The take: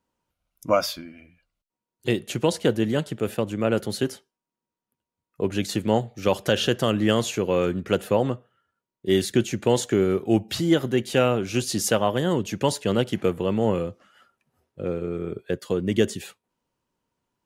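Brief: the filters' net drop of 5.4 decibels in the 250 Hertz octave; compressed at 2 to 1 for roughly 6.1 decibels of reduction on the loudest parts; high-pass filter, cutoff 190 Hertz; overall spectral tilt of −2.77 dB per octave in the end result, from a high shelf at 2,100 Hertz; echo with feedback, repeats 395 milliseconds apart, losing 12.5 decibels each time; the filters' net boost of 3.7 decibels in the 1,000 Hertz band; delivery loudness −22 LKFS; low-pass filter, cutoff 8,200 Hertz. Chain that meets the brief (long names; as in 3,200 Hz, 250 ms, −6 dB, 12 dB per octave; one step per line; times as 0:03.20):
high-pass filter 190 Hz
low-pass filter 8,200 Hz
parametric band 250 Hz −6.5 dB
parametric band 1,000 Hz +3.5 dB
high-shelf EQ 2,100 Hz +7.5 dB
downward compressor 2 to 1, threshold −26 dBFS
repeating echo 395 ms, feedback 24%, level −12.5 dB
level +6.5 dB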